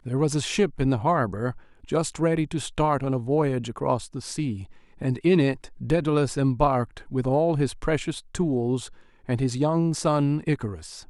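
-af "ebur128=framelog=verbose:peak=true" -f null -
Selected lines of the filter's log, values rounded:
Integrated loudness:
  I:         -25.1 LUFS
  Threshold: -35.3 LUFS
Loudness range:
  LRA:         2.1 LU
  Threshold: -45.3 LUFS
  LRA low:   -26.3 LUFS
  LRA high:  -24.1 LUFS
True peak:
  Peak:       -7.5 dBFS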